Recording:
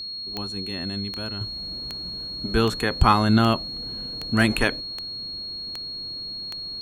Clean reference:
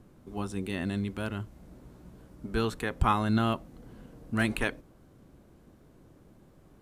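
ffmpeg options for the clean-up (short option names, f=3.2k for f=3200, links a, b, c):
-af "adeclick=t=4,bandreject=f=4.3k:w=30,asetnsamples=n=441:p=0,asendcmd='1.41 volume volume -8dB',volume=0dB"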